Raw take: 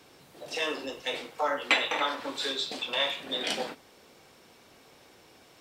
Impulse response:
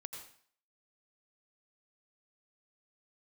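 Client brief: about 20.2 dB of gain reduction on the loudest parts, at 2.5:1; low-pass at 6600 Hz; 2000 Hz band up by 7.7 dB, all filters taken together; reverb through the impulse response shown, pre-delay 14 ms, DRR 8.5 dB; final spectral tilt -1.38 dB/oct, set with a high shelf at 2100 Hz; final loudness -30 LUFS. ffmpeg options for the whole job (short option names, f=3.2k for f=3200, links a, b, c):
-filter_complex "[0:a]lowpass=6.6k,equalizer=f=2k:t=o:g=7.5,highshelf=f=2.1k:g=3,acompressor=threshold=-44dB:ratio=2.5,asplit=2[a][b];[1:a]atrim=start_sample=2205,adelay=14[c];[b][c]afir=irnorm=-1:irlink=0,volume=-5.5dB[d];[a][d]amix=inputs=2:normalize=0,volume=9dB"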